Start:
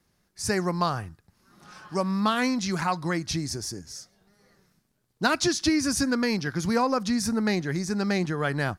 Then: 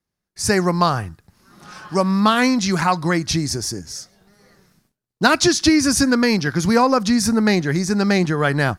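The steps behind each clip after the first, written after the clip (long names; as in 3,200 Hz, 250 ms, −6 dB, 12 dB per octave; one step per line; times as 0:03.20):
noise gate with hold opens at −57 dBFS
level +8.5 dB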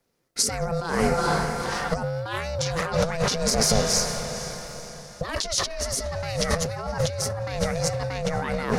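ring modulation 330 Hz
feedback delay with all-pass diffusion 453 ms, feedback 45%, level −14 dB
compressor whose output falls as the input rises −30 dBFS, ratio −1
level +3.5 dB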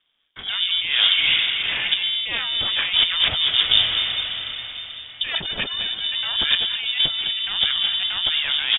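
single-tap delay 214 ms −12 dB
voice inversion scrambler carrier 3,600 Hz
level +4 dB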